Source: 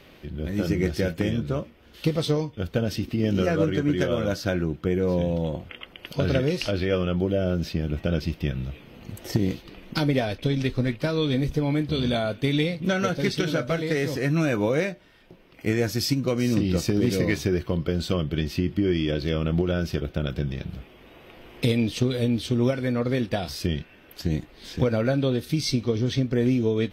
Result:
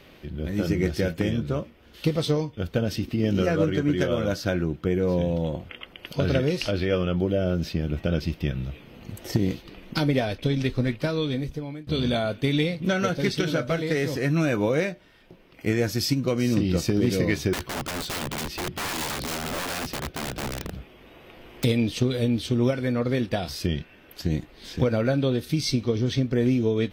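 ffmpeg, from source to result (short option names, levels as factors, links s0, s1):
-filter_complex "[0:a]asettb=1/sr,asplit=3[s0][s1][s2];[s0]atrim=end=17.534[s3];[s1]atrim=start=17.53:end=21.64,asetpts=PTS-STARTPTS,afade=t=in:d=0.004:c=qsin,afade=t=out:st=4.106:d=0.004:c=qsin,aeval=exprs='(mod(17.8*val(0)+1,2)-1)/17.8':c=same[s4];[s2]atrim=start=21.636[s5];[s3][s4]acrossfade=d=0.004:c1=hsin:c2=qsin[s6];[s6][s5]acrossfade=d=0.004:c1=qsin:c2=hsin,asplit=2[s7][s8];[s7]atrim=end=11.87,asetpts=PTS-STARTPTS,afade=t=out:st=11.01:d=0.86:silence=0.105925[s9];[s8]atrim=start=11.87,asetpts=PTS-STARTPTS,afade=t=in:d=0.004:c=hsin:silence=0.105925[s10];[s9][s10]concat=n=2:v=0:a=1"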